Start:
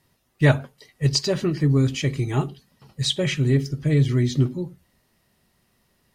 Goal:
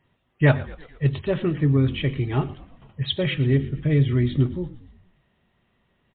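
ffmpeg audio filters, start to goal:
ffmpeg -i in.wav -filter_complex "[0:a]asplit=6[link_01][link_02][link_03][link_04][link_05][link_06];[link_02]adelay=116,afreqshift=-44,volume=-18dB[link_07];[link_03]adelay=232,afreqshift=-88,volume=-23dB[link_08];[link_04]adelay=348,afreqshift=-132,volume=-28.1dB[link_09];[link_05]adelay=464,afreqshift=-176,volume=-33.1dB[link_10];[link_06]adelay=580,afreqshift=-220,volume=-38.1dB[link_11];[link_01][link_07][link_08][link_09][link_10][link_11]amix=inputs=6:normalize=0" -ar 8000 -c:a libmp3lame -b:a 64k out.mp3

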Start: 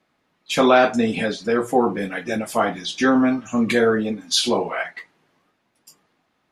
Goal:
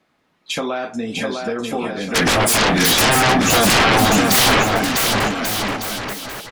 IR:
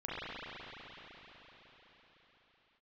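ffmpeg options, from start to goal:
-filter_complex "[0:a]acompressor=threshold=-26dB:ratio=6,asplit=3[link_01][link_02][link_03];[link_01]afade=type=out:start_time=2.14:duration=0.02[link_04];[link_02]aeval=exprs='0.15*sin(PI/2*7.08*val(0)/0.15)':channel_layout=same,afade=type=in:start_time=2.14:duration=0.02,afade=type=out:start_time=4.62:duration=0.02[link_05];[link_03]afade=type=in:start_time=4.62:duration=0.02[link_06];[link_04][link_05][link_06]amix=inputs=3:normalize=0,aecho=1:1:650|1138|1503|1777|1983:0.631|0.398|0.251|0.158|0.1,volume=4dB"

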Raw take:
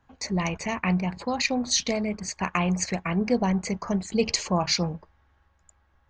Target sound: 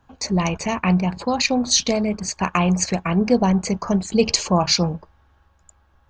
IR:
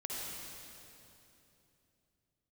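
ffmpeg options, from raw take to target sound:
-af "equalizer=frequency=2000:width=3.9:gain=-7.5,volume=6.5dB"

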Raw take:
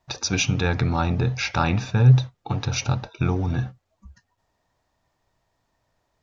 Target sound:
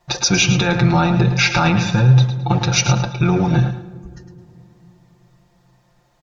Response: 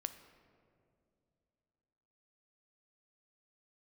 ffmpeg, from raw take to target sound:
-filter_complex "[0:a]asplit=2[link_01][link_02];[1:a]atrim=start_sample=2205,asetrate=33516,aresample=44100[link_03];[link_02][link_03]afir=irnorm=-1:irlink=0,volume=-6dB[link_04];[link_01][link_04]amix=inputs=2:normalize=0,alimiter=limit=-12dB:level=0:latency=1:release=42,aecho=1:1:5.7:0.94,asplit=2[link_05][link_06];[link_06]aecho=0:1:108|216|324:0.316|0.0791|0.0198[link_07];[link_05][link_07]amix=inputs=2:normalize=0,volume=5dB"

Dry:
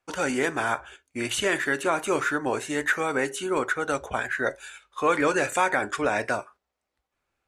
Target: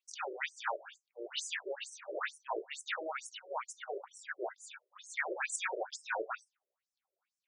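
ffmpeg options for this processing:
ffmpeg -i in.wav -af "afftfilt=real='re*lt(hypot(re,im),0.282)':imag='im*lt(hypot(re,im),0.282)':win_size=1024:overlap=0.75,afftfilt=real='re*between(b*sr/1024,440*pow(7300/440,0.5+0.5*sin(2*PI*2.2*pts/sr))/1.41,440*pow(7300/440,0.5+0.5*sin(2*PI*2.2*pts/sr))*1.41)':imag='im*between(b*sr/1024,440*pow(7300/440,0.5+0.5*sin(2*PI*2.2*pts/sr))/1.41,440*pow(7300/440,0.5+0.5*sin(2*PI*2.2*pts/sr))*1.41)':win_size=1024:overlap=0.75,volume=-2dB" out.wav

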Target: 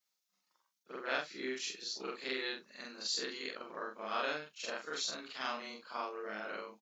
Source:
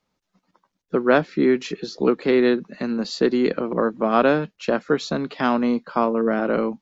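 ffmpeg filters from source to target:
ffmpeg -i in.wav -filter_complex "[0:a]afftfilt=real='re':imag='-im':win_size=4096:overlap=0.75,aderivative,asplit=2[link_01][link_02];[link_02]adelay=15,volume=-11dB[link_03];[link_01][link_03]amix=inputs=2:normalize=0,volume=4.5dB" out.wav

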